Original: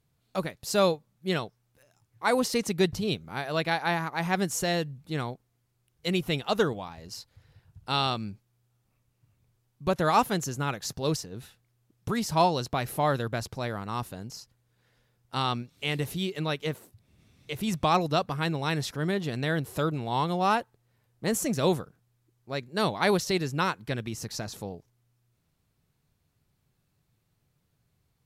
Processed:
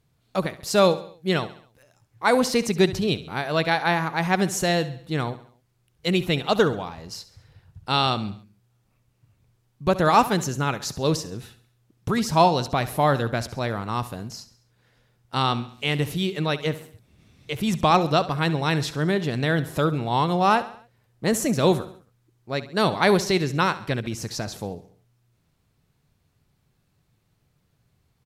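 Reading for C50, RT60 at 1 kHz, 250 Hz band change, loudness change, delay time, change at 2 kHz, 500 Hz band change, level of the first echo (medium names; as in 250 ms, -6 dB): no reverb, no reverb, +5.5 dB, +5.5 dB, 68 ms, +5.5 dB, +5.5 dB, -15.5 dB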